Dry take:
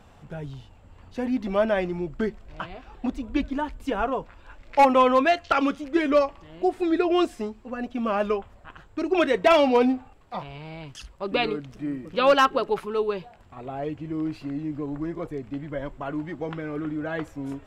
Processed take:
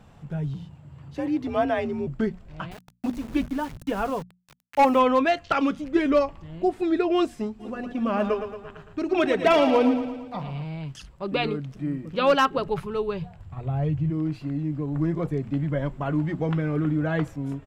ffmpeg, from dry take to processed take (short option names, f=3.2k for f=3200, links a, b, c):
-filter_complex "[0:a]asettb=1/sr,asplit=3[a][b][c];[a]atrim=end=0.544[d];[b]atrim=start=0.54:end=2.07,asetpts=PTS-STARTPTS,afade=t=in:d=0.004:c=qsin,afade=t=out:st=1.526:d=0.004:c=qsin,afreqshift=49[e];[c]atrim=start=2.066[f];[d][e]acrossfade=d=0.004:c1=hsin:c2=qsin[g];[g][f]acrossfade=d=0.004:c1=qsin:c2=hsin,asettb=1/sr,asplit=3[h][i][j];[h]atrim=end=2.714[k];[i]atrim=start=2.71:end=5,asetpts=PTS-STARTPTS,afade=t=in:d=0.004:c=qsin,afade=t=out:st=2.286:d=0.004:c=qsin,aeval=exprs='val(0)*gte(abs(val(0)),0.015)':c=same[l];[j]atrim=start=4.996[m];[k][l]acrossfade=d=0.004:c1=hsin:c2=qsin[n];[n][m]acrossfade=d=0.004:c1=qsin:c2=hsin,asettb=1/sr,asplit=3[o][p][q];[o]atrim=end=5.784[r];[p]atrim=start=5.78:end=6.71,asetpts=PTS-STARTPTS,afade=t=in:d=0.004:c=qsin,afade=t=out:st=0.926:d=0.004:c=qsin,lowshelf=f=150:g=7[s];[q]atrim=start=6.706[t];[r][s]acrossfade=d=0.004:c1=hsin:c2=qsin[u];[u][t]acrossfade=d=0.004:c1=qsin:c2=hsin,asplit=3[v][w][x];[v]afade=t=out:st=7.59:d=0.02[y];[w]aecho=1:1:113|226|339|452|565|678:0.355|0.195|0.107|0.059|0.0325|0.0179,afade=t=in:st=7.59:d=0.02,afade=t=out:st=10.64:d=0.02[z];[x]afade=t=in:st=10.64:d=0.02[aa];[y][z][aa]amix=inputs=3:normalize=0,asettb=1/sr,asplit=3[ab][ac][ad];[ab]atrim=end=12.574[ae];[ac]atrim=start=12.57:end=14.1,asetpts=PTS-STARTPTS,afade=t=in:d=0.004:c=qsin,afade=t=out:st=1.526:d=0.004:c=qsin,lowshelf=f=160:t=q:w=1.5:g=10.5[af];[ad]atrim=start=14.096[ag];[ae][af]acrossfade=d=0.004:c1=hsin:c2=qsin[ah];[ah][ag]acrossfade=d=0.004:c1=qsin:c2=hsin,asplit=3[ai][aj][ak];[ai]atrim=end=14.952[al];[aj]atrim=start=14.948:end=17.362,asetpts=PTS-STARTPTS,volume=4dB[am];[ak]atrim=start=17.358[an];[al][am]acrossfade=d=0.004:c1=hsin:c2=hsin[ao];[ao][an]acrossfade=d=0.004:c1=hsin:c2=hsin,equalizer=f=150:t=o:w=1:g=11,bandreject=f=60:t=h:w=6,bandreject=f=120:t=h:w=6,bandreject=f=180:t=h:w=6,bandreject=f=240:t=h:w=6,volume=-2dB"